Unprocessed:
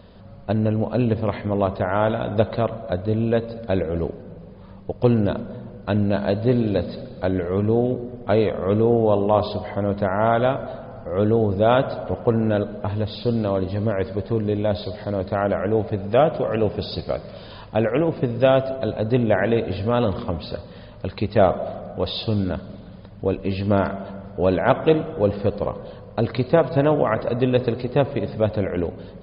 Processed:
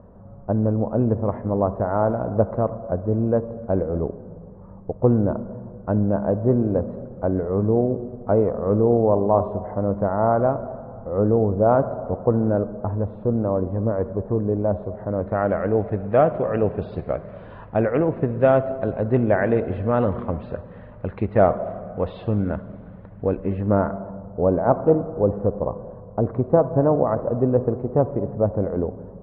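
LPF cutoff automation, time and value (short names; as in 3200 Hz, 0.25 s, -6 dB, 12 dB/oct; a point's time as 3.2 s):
LPF 24 dB/oct
14.93 s 1200 Hz
15.49 s 2000 Hz
23.25 s 2000 Hz
24.23 s 1100 Hz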